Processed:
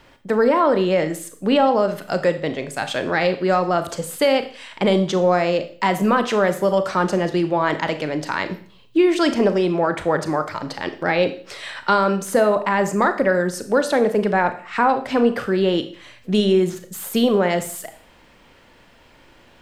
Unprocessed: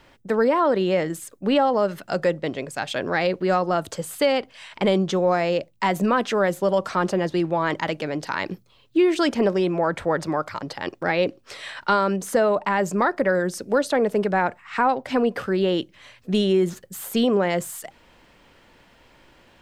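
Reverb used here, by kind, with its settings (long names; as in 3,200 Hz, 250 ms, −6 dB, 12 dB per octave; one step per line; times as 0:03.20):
four-comb reverb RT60 0.48 s, combs from 26 ms, DRR 9 dB
level +2.5 dB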